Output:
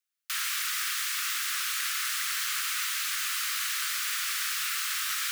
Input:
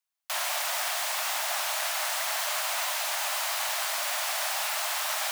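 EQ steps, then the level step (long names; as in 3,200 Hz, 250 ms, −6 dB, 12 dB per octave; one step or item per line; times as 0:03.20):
Butterworth high-pass 1,200 Hz 72 dB per octave
0.0 dB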